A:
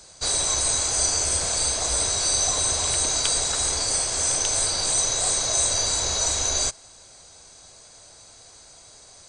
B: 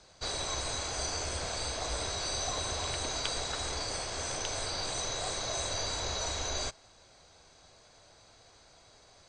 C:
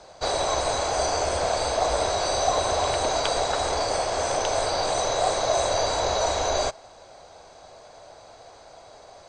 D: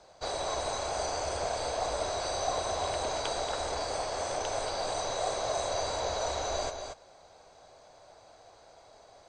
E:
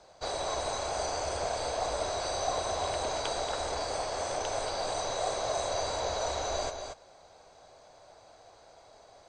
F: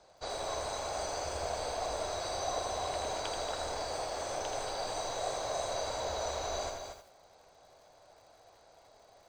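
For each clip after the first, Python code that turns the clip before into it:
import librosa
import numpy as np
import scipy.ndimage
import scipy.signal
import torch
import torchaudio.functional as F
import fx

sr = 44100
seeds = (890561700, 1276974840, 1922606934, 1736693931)

y1 = scipy.signal.sosfilt(scipy.signal.butter(2, 3900.0, 'lowpass', fs=sr, output='sos'), x)
y1 = y1 * 10.0 ** (-5.5 / 20.0)
y2 = fx.peak_eq(y1, sr, hz=670.0, db=13.0, octaves=1.6)
y2 = y2 * 10.0 ** (4.5 / 20.0)
y3 = y2 + 10.0 ** (-7.0 / 20.0) * np.pad(y2, (int(231 * sr / 1000.0), 0))[:len(y2)]
y3 = y3 * 10.0 ** (-9.0 / 20.0)
y4 = y3
y5 = fx.echo_crushed(y4, sr, ms=81, feedback_pct=35, bits=9, wet_db=-6)
y5 = y5 * 10.0 ** (-4.5 / 20.0)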